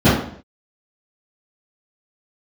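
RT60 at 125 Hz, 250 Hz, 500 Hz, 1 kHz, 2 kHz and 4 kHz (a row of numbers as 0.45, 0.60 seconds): 0.65, 0.55, 0.60, 0.55, 0.55, 0.50 seconds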